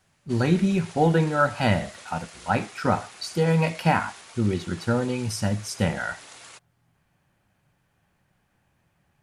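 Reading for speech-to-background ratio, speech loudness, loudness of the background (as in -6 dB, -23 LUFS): 19.5 dB, -25.0 LUFS, -44.5 LUFS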